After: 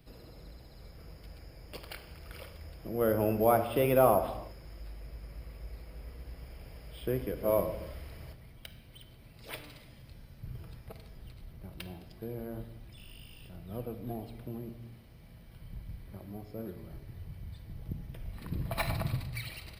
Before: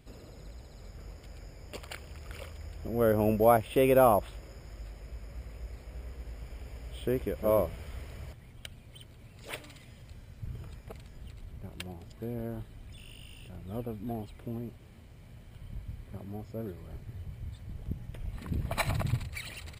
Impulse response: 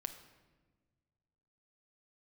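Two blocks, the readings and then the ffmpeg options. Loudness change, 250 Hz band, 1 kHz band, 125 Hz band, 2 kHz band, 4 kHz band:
-2.0 dB, -2.5 dB, -2.0 dB, -2.0 dB, -2.5 dB, -1.5 dB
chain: -filter_complex "[0:a]acrossover=split=120|3100[a][b][c];[c]asoftclip=type=hard:threshold=-36.5dB[d];[a][b][d]amix=inputs=3:normalize=0,aexciter=amount=1:drive=4.8:freq=4.1k[e];[1:a]atrim=start_sample=2205,afade=t=out:st=0.4:d=0.01,atrim=end_sample=18081[f];[e][f]afir=irnorm=-1:irlink=0"

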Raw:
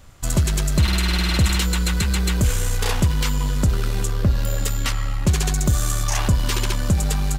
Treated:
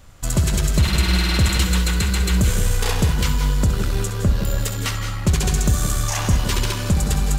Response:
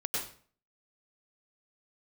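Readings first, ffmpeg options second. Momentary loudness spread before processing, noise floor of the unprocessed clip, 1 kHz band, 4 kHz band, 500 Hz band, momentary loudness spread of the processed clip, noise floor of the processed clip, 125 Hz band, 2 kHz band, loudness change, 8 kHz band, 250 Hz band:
5 LU, -23 dBFS, +1.0 dB, +1.0 dB, +1.5 dB, 5 LU, -26 dBFS, +1.0 dB, +1.0 dB, +1.0 dB, +1.0 dB, +1.5 dB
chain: -filter_complex "[0:a]asplit=2[a][b];[1:a]atrim=start_sample=2205,adelay=66[c];[b][c]afir=irnorm=-1:irlink=0,volume=-10dB[d];[a][d]amix=inputs=2:normalize=0"

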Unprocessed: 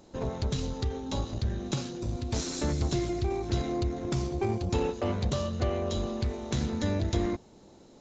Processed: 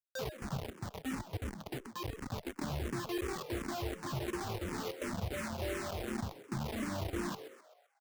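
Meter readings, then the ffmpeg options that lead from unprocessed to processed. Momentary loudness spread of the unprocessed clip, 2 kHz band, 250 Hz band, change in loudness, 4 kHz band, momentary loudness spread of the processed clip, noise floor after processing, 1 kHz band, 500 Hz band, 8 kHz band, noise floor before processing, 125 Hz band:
5 LU, +0.5 dB, -8.0 dB, -8.0 dB, -6.5 dB, 5 LU, -67 dBFS, -4.5 dB, -8.5 dB, n/a, -55 dBFS, -10.5 dB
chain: -filter_complex "[0:a]highpass=f=120:p=1,afftfilt=real='re*gte(hypot(re,im),0.112)':imag='im*gte(hypot(re,im),0.112)':win_size=1024:overlap=0.75,lowpass=f=3.1k:w=0.5412,lowpass=f=3.1k:w=1.3066,bandreject=f=60:t=h:w=6,bandreject=f=120:t=h:w=6,bandreject=f=180:t=h:w=6,bandreject=f=240:t=h:w=6,bandreject=f=300:t=h:w=6,bandreject=f=360:t=h:w=6,adynamicequalizer=threshold=0.00126:dfrequency=1700:dqfactor=3.2:tfrequency=1700:tqfactor=3.2:attack=5:release=100:ratio=0.375:range=2.5:mode=cutabove:tftype=bell,alimiter=level_in=3.5dB:limit=-24dB:level=0:latency=1:release=27,volume=-3.5dB,acompressor=threshold=-43dB:ratio=3,acrusher=bits=6:mix=0:aa=0.000001,asplit=2[a][b];[b]asplit=5[c][d][e][f][g];[c]adelay=129,afreqshift=93,volume=-13dB[h];[d]adelay=258,afreqshift=186,volume=-19.2dB[i];[e]adelay=387,afreqshift=279,volume=-25.4dB[j];[f]adelay=516,afreqshift=372,volume=-31.6dB[k];[g]adelay=645,afreqshift=465,volume=-37.8dB[l];[h][i][j][k][l]amix=inputs=5:normalize=0[m];[a][m]amix=inputs=2:normalize=0,asplit=2[n][o];[o]afreqshift=-2.8[p];[n][p]amix=inputs=2:normalize=1,volume=6.5dB"

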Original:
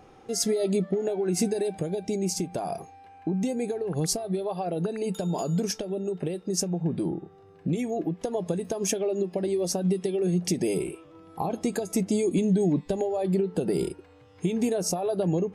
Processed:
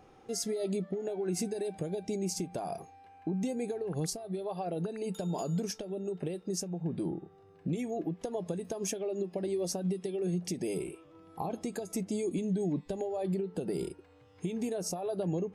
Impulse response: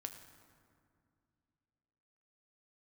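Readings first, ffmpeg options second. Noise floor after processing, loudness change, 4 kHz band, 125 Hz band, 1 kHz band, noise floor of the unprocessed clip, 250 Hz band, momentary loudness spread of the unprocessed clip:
-59 dBFS, -7.0 dB, -8.0 dB, -7.0 dB, -6.5 dB, -53 dBFS, -7.0 dB, 7 LU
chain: -af "alimiter=limit=-18.5dB:level=0:latency=1:release=449,volume=-5.5dB"

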